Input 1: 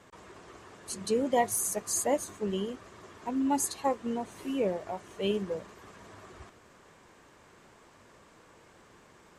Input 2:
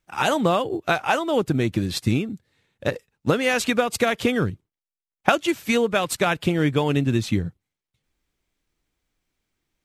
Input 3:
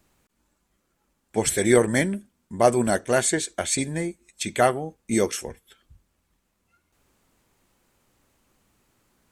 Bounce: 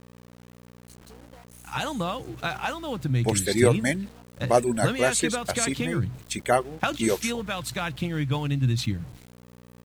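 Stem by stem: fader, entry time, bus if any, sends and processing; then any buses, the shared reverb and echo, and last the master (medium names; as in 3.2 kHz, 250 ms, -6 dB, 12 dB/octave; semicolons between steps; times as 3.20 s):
-14.5 dB, 0.00 s, no send, compression 10:1, threshold -33 dBFS, peak gain reduction 14 dB
-7.5 dB, 1.55 s, no send, graphic EQ with 31 bands 125 Hz +12 dB, 400 Hz -11 dB, 630 Hz -5 dB, 4 kHz +5 dB; decay stretcher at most 110 dB/s
-2.0 dB, 1.90 s, no send, reverb removal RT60 1 s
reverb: none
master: hum 60 Hz, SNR 20 dB; small samples zeroed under -44.5 dBFS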